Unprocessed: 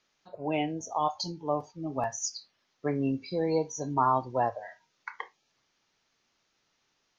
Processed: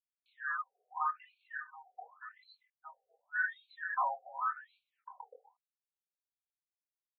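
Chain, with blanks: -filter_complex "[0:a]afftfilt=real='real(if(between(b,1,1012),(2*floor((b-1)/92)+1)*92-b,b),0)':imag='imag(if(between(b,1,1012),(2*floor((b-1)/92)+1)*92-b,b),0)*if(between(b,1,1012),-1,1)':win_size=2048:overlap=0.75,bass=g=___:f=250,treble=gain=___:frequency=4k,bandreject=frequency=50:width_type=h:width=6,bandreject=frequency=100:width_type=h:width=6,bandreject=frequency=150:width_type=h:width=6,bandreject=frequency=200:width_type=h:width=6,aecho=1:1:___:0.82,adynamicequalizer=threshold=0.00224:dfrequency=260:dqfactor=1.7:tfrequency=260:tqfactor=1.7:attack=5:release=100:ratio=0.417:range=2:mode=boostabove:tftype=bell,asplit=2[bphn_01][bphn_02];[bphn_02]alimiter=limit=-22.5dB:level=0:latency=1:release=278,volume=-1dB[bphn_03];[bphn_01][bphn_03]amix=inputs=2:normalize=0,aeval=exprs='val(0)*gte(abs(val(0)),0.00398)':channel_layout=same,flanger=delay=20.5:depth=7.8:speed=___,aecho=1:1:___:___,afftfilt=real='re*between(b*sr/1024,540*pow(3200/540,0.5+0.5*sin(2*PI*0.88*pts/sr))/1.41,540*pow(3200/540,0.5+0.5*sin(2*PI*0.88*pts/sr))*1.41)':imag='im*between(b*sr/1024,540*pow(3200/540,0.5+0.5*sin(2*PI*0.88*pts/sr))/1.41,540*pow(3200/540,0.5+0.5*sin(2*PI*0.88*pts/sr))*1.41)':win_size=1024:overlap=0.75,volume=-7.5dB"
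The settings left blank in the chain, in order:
-1, -13, 4, 0.81, 249, 0.282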